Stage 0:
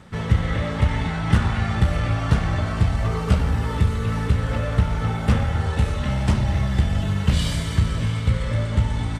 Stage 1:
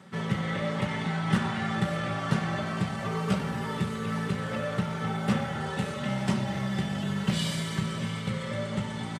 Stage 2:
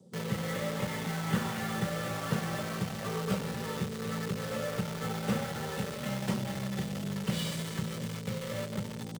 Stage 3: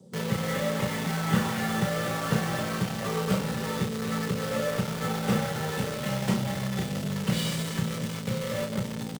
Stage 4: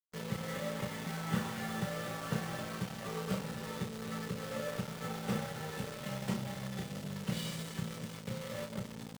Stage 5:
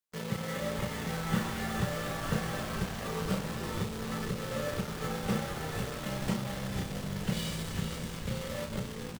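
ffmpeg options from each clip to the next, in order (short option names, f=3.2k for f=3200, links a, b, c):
-af "highpass=f=130:w=0.5412,highpass=f=130:w=1.3066,aecho=1:1:5.2:0.45,volume=-4.5dB"
-filter_complex "[0:a]equalizer=f=490:w=7.4:g=12.5,acrossover=split=180|650|4600[a][b][c][d];[c]acrusher=bits=5:mix=0:aa=0.000001[e];[a][b][e][d]amix=inputs=4:normalize=0,volume=-5dB"
-filter_complex "[0:a]asplit=2[a][b];[b]adelay=32,volume=-7dB[c];[a][c]amix=inputs=2:normalize=0,volume=4.5dB"
-af "aeval=exprs='sgn(val(0))*max(abs(val(0))-0.00891,0)':c=same,volume=-8.5dB"
-filter_complex "[0:a]asplit=9[a][b][c][d][e][f][g][h][i];[b]adelay=463,afreqshift=-94,volume=-8dB[j];[c]adelay=926,afreqshift=-188,volume=-12.2dB[k];[d]adelay=1389,afreqshift=-282,volume=-16.3dB[l];[e]adelay=1852,afreqshift=-376,volume=-20.5dB[m];[f]adelay=2315,afreqshift=-470,volume=-24.6dB[n];[g]adelay=2778,afreqshift=-564,volume=-28.8dB[o];[h]adelay=3241,afreqshift=-658,volume=-32.9dB[p];[i]adelay=3704,afreqshift=-752,volume=-37.1dB[q];[a][j][k][l][m][n][o][p][q]amix=inputs=9:normalize=0,volume=3.5dB"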